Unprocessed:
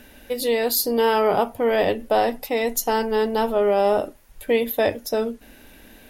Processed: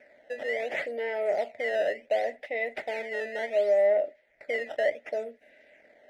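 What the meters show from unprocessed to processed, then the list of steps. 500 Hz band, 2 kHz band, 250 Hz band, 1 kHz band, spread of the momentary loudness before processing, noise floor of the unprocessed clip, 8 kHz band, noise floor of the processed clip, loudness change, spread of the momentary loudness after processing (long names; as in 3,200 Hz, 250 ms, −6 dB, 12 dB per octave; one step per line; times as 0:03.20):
−6.5 dB, −2.5 dB, −21.5 dB, −14.5 dB, 7 LU, −49 dBFS, below −25 dB, −65 dBFS, −7.5 dB, 11 LU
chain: sample-and-hold swept by an LFO 11×, swing 160% 0.69 Hz
sine wavefolder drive 3 dB, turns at −8 dBFS
pair of resonant band-passes 1,100 Hz, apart 1.7 octaves
level −5.5 dB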